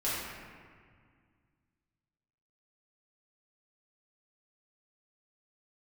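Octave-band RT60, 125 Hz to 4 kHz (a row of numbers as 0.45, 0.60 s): 2.8, 2.6, 1.9, 1.9, 1.8, 1.2 s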